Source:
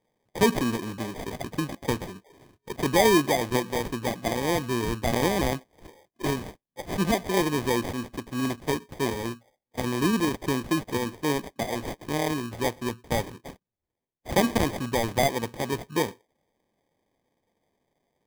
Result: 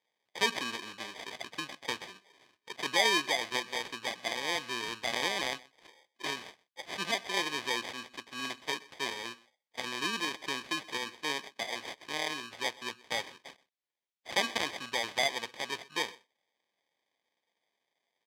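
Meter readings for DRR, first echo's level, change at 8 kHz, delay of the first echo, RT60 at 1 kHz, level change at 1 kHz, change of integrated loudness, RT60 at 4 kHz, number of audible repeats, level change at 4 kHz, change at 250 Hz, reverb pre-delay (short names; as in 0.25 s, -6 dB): none, -22.5 dB, -5.0 dB, 0.126 s, none, -7.0 dB, -6.5 dB, none, 1, +1.5 dB, -17.5 dB, none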